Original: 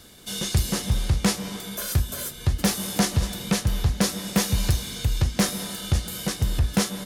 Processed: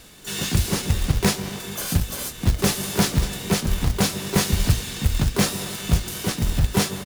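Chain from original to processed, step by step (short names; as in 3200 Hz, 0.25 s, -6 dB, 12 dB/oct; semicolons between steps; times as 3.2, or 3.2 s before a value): harmoniser -12 st -7 dB, -5 st -5 dB, +12 st -6 dB; short-mantissa float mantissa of 2-bit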